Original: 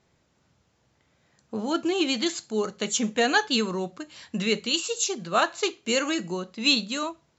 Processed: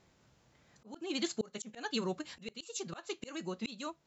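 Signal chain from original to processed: time stretch by phase-locked vocoder 0.55×; slow attack 759 ms; trim +2 dB

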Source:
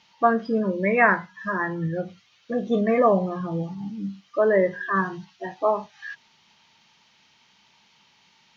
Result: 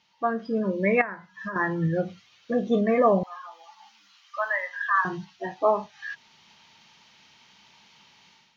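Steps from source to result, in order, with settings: 1.01–1.56 s: compression 10:1, threshold -31 dBFS, peak gain reduction 18.5 dB; 3.23–5.05 s: inverse Chebyshev high-pass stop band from 440 Hz, stop band 40 dB; level rider gain up to 11 dB; trim -7.5 dB

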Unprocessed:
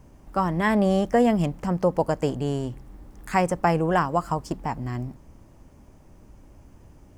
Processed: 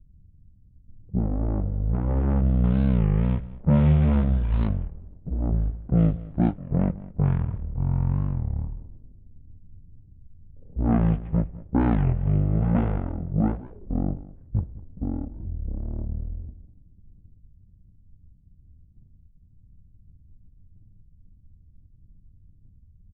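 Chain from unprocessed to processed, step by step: median filter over 41 samples; level-controlled noise filter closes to 430 Hz, open at -17.5 dBFS; bass shelf 210 Hz -9.5 dB; in parallel at +0.5 dB: peak limiter -20.5 dBFS, peak gain reduction 7.5 dB; on the sum: wide varispeed 0.31×; on a send: delay 204 ms -19 dB; on the sum: resampled via 8 kHz; warped record 33 1/3 rpm, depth 250 cents

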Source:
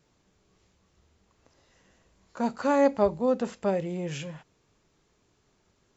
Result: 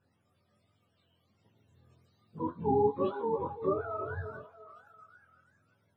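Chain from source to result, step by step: spectrum inverted on a logarithmic axis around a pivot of 480 Hz; 2.38–3.97 s: elliptic low-pass 3.9 kHz, stop band 40 dB; repeats whose band climbs or falls 342 ms, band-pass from 530 Hz, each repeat 0.7 oct, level -11 dB; chorus voices 2, 1.3 Hz, delay 21 ms, depth 3 ms

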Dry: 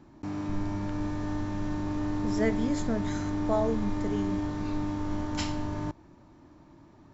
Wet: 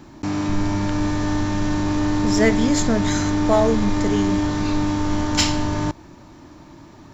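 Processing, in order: in parallel at -10 dB: hard clipper -29 dBFS, distortion -9 dB; on the sum: treble shelf 2.2 kHz +9 dB; trim +8 dB

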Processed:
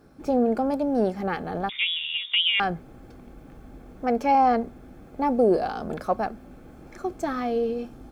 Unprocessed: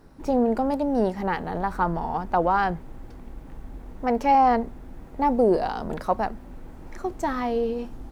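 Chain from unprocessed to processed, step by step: comb of notches 950 Hz; 1.69–2.60 s: frequency inversion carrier 3.6 kHz

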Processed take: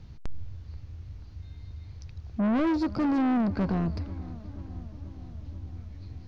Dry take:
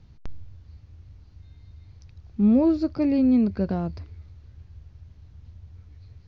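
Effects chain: saturation -28 dBFS, distortion -6 dB; on a send: filtered feedback delay 484 ms, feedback 70%, low-pass 2 kHz, level -18.5 dB; on the sum: trim +5 dB

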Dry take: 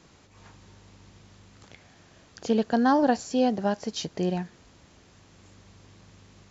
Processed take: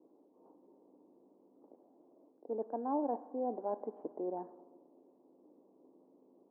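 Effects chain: reverse; compression 6:1, threshold -31 dBFS, peak gain reduction 13.5 dB; reverse; elliptic band-pass 280–990 Hz, stop band 60 dB; spring tank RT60 2 s, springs 42/54 ms, chirp 50 ms, DRR 16 dB; level-controlled noise filter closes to 380 Hz, open at -32 dBFS

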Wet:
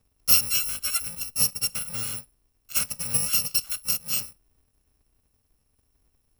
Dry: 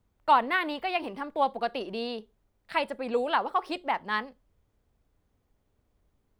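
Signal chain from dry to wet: bit-reversed sample order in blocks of 128 samples; trim +2.5 dB

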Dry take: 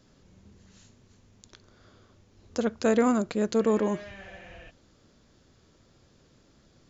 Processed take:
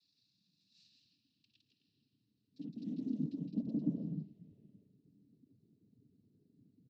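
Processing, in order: Chebyshev band-stop 250–5000 Hz, order 4; high-order bell 2.9 kHz +10 dB; peak limiter -26 dBFS, peak gain reduction 6.5 dB; on a send: loudspeakers at several distances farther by 56 m -3 dB, 90 m -9 dB; on the sum: band-pass sweep 5.4 kHz -> 560 Hz, 0.71–4.10 s; noise-vocoded speech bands 12; distance through air 330 m; tape noise reduction on one side only decoder only; trim +12 dB

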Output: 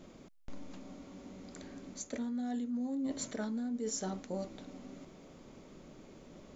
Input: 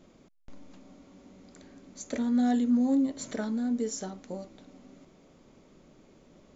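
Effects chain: reverse; compression 20:1, threshold -37 dBFS, peak gain reduction 17 dB; reverse; trim +3.5 dB

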